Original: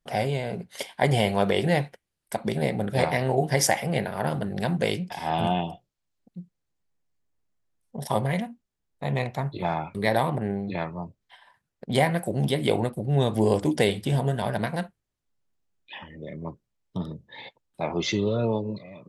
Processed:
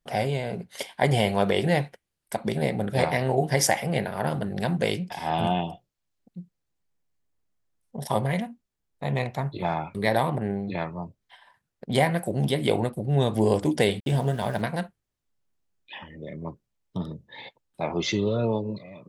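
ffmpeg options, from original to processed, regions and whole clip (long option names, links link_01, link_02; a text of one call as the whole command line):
ffmpeg -i in.wav -filter_complex "[0:a]asettb=1/sr,asplit=3[link_01][link_02][link_03];[link_01]atrim=end=14.004[link_04];[link_02]atrim=start=14:end=14.62,asetpts=PTS-STARTPTS,afade=type=in:duration=0.004:curve=qsin,afade=type=out:start_time=0.616:duration=0.004:curve=qsin,agate=range=-33dB:threshold=-29dB:ratio=3:release=100:detection=peak,aeval=exprs='val(0)*gte(abs(val(0)),0.0075)':channel_layout=same[link_05];[link_03]atrim=start=14.616[link_06];[link_04][link_05]acrossfade=duration=0.004:curve1=hsin:curve2=qsin[link_07];[link_07][link_06]acrossfade=duration=0.004:curve1=qsin:curve2=hsin" out.wav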